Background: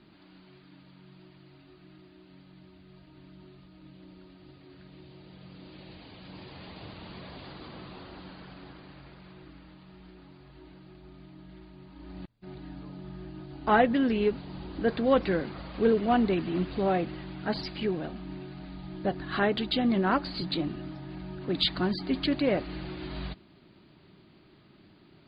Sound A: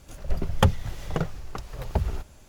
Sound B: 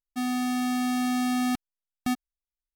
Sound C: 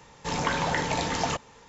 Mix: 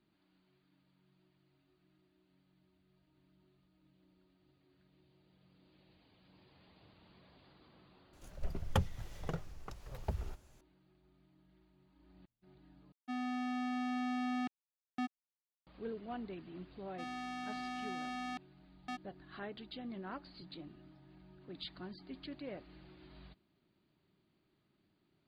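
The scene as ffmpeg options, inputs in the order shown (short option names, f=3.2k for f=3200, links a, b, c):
-filter_complex "[2:a]asplit=2[a][b];[0:a]volume=-19.5dB[c];[a]highpass=220,lowpass=3.1k[d];[b]highpass=420,lowpass=3.9k[e];[c]asplit=2[f][g];[f]atrim=end=12.924[h];[d]atrim=end=2.75,asetpts=PTS-STARTPTS,volume=-9dB[i];[g]atrim=start=15.666[j];[1:a]atrim=end=2.48,asetpts=PTS-STARTPTS,volume=-12.5dB,afade=t=in:d=0.004:c=hsin,afade=t=out:st=2.476:d=0.004:c=hsin,adelay=8130[k];[e]atrim=end=2.75,asetpts=PTS-STARTPTS,volume=-10dB,afade=t=in:d=0.004:c=hsin,afade=t=out:st=2.746:d=0.004:c=hsin,adelay=16820[l];[h][i]acrossfade=d=0.004:c1=hsin:c2=hsin[m];[m][j]acrossfade=d=0.004:c1=hsin:c2=hsin[n];[n][k][l]amix=inputs=3:normalize=0"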